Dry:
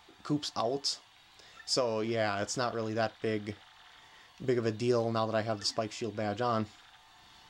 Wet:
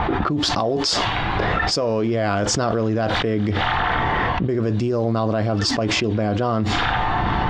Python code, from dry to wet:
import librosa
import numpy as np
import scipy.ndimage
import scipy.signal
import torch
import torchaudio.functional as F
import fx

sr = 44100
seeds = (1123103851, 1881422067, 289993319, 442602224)

y = fx.env_lowpass(x, sr, base_hz=1500.0, full_db=-28.5)
y = fx.lowpass(y, sr, hz=2600.0, slope=6)
y = fx.low_shelf(y, sr, hz=380.0, db=7.5)
y = fx.env_flatten(y, sr, amount_pct=100)